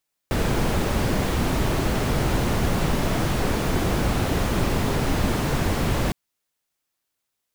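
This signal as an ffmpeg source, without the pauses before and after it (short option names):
-f lavfi -i "anoisesrc=c=brown:a=0.394:d=5.81:r=44100:seed=1"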